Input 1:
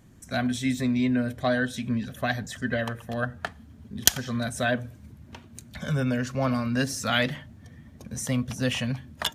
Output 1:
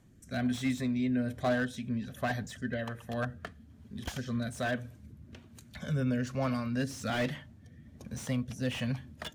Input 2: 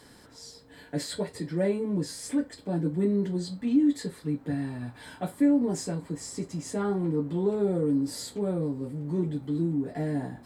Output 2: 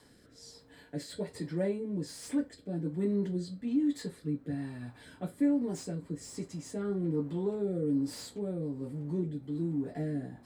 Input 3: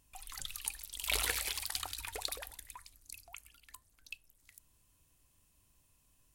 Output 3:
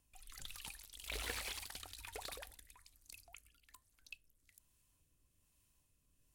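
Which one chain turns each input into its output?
rotary cabinet horn 1.2 Hz; slew-rate limiter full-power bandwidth 69 Hz; trim -3.5 dB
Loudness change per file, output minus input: -6.5 LU, -5.5 LU, -10.0 LU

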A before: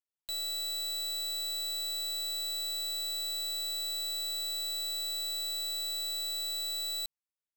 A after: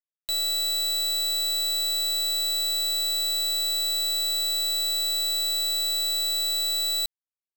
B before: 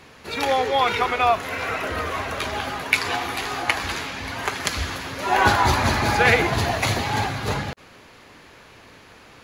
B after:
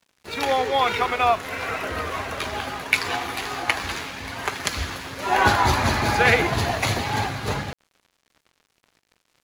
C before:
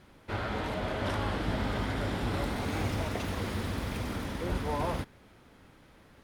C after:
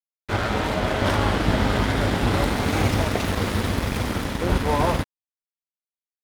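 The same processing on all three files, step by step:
crossover distortion -41.5 dBFS; normalise loudness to -23 LUFS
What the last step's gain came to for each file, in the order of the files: +15.0 dB, 0.0 dB, +12.5 dB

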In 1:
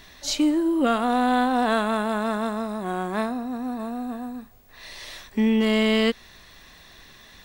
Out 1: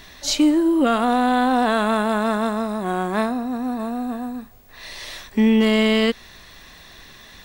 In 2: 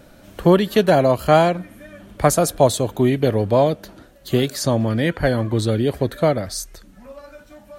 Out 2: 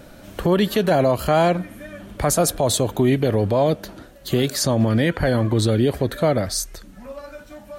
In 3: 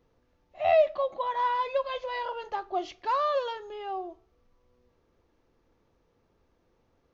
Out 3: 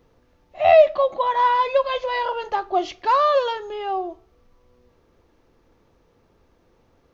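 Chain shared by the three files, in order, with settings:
peak limiter -12.5 dBFS; normalise loudness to -20 LUFS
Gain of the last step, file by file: +4.5 dB, +3.5 dB, +9.0 dB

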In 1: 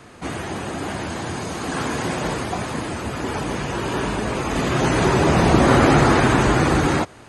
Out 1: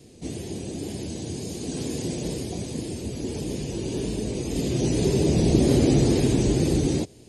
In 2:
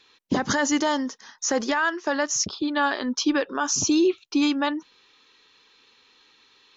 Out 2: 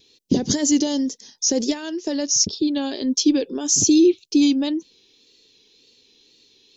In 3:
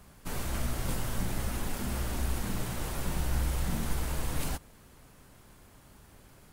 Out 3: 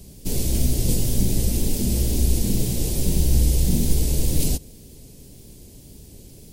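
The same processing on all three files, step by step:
wow and flutter 65 cents; FFT filter 430 Hz 0 dB, 1.3 kHz -27 dB, 2.4 kHz -10 dB, 4.9 kHz +1 dB; peak normalisation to -6 dBFS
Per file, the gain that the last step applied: -3.0 dB, +5.5 dB, +12.5 dB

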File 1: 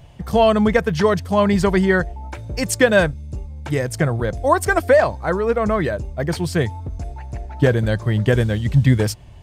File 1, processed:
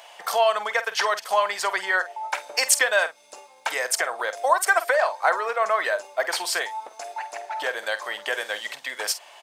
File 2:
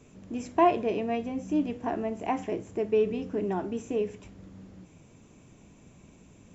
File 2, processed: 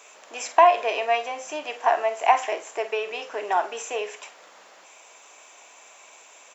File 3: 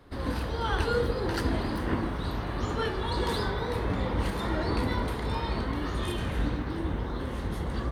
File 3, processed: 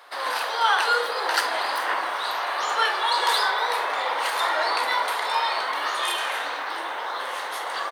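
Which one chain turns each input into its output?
compression, threshold -23 dBFS; high-pass 690 Hz 24 dB/octave; doubling 48 ms -13 dB; normalise loudness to -24 LUFS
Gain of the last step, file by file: +10.0 dB, +15.0 dB, +12.5 dB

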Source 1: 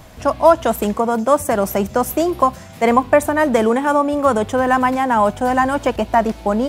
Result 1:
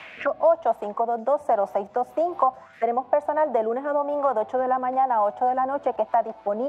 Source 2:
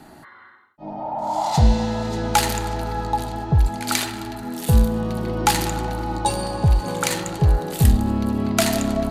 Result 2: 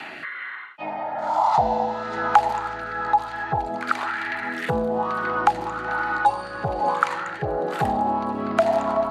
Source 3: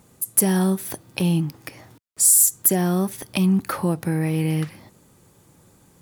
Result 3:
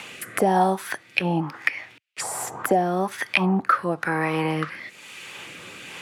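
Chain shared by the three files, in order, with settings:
auto-wah 760–2700 Hz, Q 3.7, down, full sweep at -15.5 dBFS; rotary cabinet horn 1.1 Hz; three bands compressed up and down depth 70%; normalise loudness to -24 LUFS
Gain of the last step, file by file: +3.0 dB, +13.0 dB, +19.5 dB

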